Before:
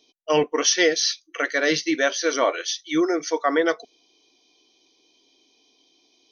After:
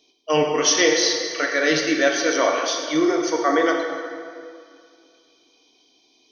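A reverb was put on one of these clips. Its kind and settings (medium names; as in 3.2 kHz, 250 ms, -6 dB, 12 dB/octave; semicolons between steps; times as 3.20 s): plate-style reverb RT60 2.2 s, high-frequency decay 0.7×, DRR 0.5 dB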